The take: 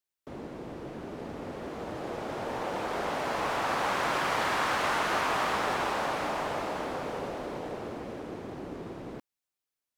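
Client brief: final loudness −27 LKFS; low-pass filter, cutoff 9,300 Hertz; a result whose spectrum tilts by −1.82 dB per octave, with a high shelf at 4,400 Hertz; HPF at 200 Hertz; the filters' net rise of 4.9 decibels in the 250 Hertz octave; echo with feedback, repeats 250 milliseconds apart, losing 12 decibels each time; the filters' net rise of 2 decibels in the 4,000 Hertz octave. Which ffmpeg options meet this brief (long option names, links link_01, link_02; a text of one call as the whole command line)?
ffmpeg -i in.wav -af "highpass=200,lowpass=9300,equalizer=frequency=250:width_type=o:gain=8,equalizer=frequency=4000:width_type=o:gain=6.5,highshelf=frequency=4400:gain=-7.5,aecho=1:1:250|500|750:0.251|0.0628|0.0157,volume=4dB" out.wav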